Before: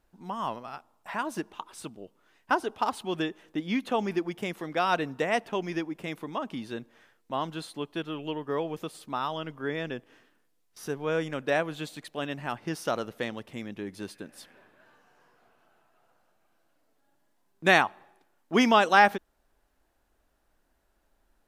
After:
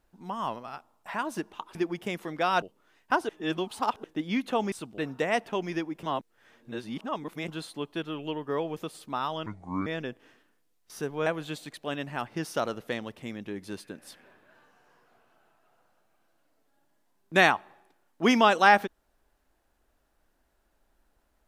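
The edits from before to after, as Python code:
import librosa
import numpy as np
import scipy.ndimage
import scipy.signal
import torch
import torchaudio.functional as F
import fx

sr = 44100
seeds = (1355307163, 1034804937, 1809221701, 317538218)

y = fx.edit(x, sr, fx.swap(start_s=1.75, length_s=0.26, other_s=4.11, other_length_s=0.87),
    fx.reverse_span(start_s=2.68, length_s=0.75),
    fx.reverse_span(start_s=6.03, length_s=1.45),
    fx.speed_span(start_s=9.46, length_s=0.27, speed=0.67),
    fx.cut(start_s=11.13, length_s=0.44), tone=tone)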